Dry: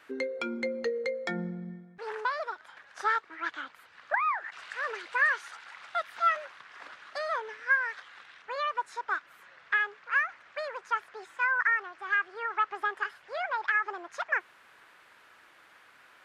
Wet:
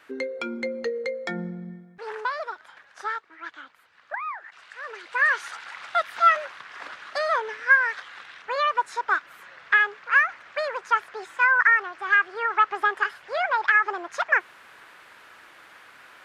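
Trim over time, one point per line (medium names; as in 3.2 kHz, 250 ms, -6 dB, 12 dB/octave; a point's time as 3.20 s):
2.69 s +2.5 dB
3.23 s -4 dB
4.83 s -4 dB
5.43 s +8 dB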